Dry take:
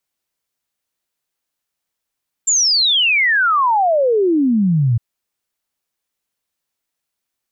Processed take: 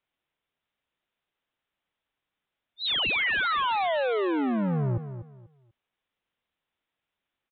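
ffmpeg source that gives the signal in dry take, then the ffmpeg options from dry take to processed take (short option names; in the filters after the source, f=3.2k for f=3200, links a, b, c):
-f lavfi -i "aevalsrc='0.266*clip(min(t,2.51-t)/0.01,0,1)*sin(2*PI*7400*2.51/log(110/7400)*(exp(log(110/7400)*t/2.51)-1))':d=2.51:s=44100"
-af "aresample=8000,asoftclip=type=tanh:threshold=-25.5dB,aresample=44100,aecho=1:1:244|488|732:0.282|0.0705|0.0176"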